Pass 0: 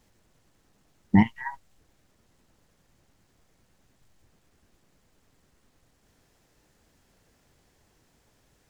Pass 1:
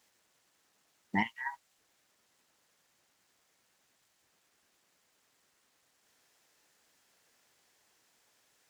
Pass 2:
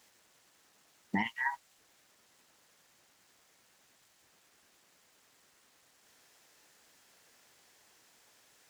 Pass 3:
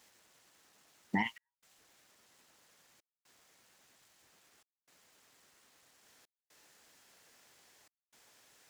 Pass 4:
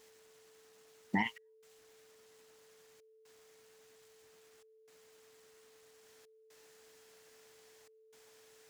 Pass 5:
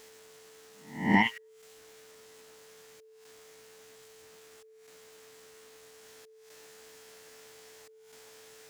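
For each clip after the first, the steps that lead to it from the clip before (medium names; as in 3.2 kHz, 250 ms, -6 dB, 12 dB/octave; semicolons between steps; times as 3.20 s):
high-pass 1.3 kHz 6 dB/octave
peak limiter -27.5 dBFS, peak gain reduction 10.5 dB; trim +6 dB
trance gate "xxxxxxxxxxx.." 120 bpm -60 dB
whistle 440 Hz -62 dBFS
reverse spectral sustain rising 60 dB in 0.50 s; trim +7.5 dB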